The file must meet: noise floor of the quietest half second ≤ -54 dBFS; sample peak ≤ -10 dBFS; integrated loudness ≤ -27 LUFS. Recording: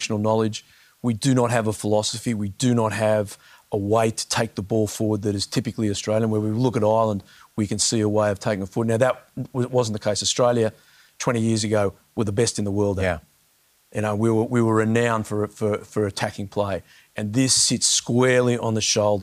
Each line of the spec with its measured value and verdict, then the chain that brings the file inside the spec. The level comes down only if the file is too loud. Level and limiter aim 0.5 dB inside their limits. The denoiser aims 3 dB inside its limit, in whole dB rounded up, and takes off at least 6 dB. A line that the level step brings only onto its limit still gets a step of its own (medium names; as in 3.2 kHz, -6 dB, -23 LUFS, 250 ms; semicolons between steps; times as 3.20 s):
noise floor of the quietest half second -62 dBFS: pass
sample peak -4.5 dBFS: fail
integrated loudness -22.0 LUFS: fail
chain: trim -5.5 dB; peak limiter -10.5 dBFS